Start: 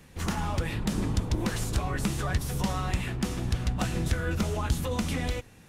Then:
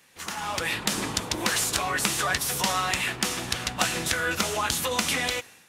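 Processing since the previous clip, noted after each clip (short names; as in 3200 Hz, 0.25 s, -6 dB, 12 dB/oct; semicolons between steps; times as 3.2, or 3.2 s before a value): HPF 1400 Hz 6 dB/oct; AGC gain up to 11 dB; gain +1.5 dB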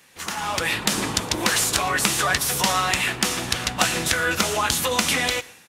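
echo 0.117 s -23 dB; gain +4.5 dB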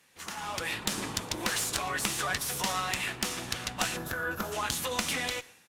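tube stage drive 6 dB, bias 0.75; spectral gain 3.97–4.52, 1800–11000 Hz -12 dB; gain -5.5 dB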